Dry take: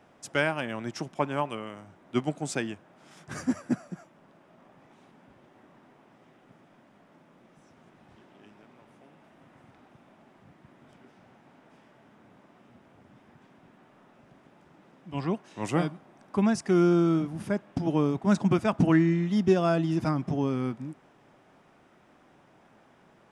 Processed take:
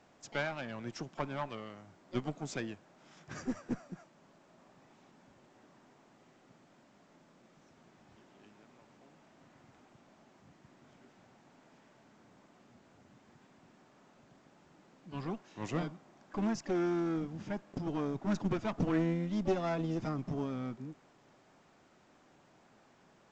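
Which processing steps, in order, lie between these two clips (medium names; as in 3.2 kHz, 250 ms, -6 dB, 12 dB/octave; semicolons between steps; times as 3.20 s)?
single-diode clipper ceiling -27.5 dBFS; harmony voices +7 st -15 dB; trim -6 dB; A-law 128 kbps 16 kHz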